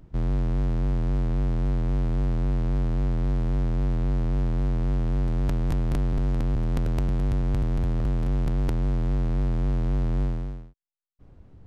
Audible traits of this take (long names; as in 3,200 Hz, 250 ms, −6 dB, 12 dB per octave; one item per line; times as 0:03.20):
background noise floor −52 dBFS
spectral slope −9.0 dB per octave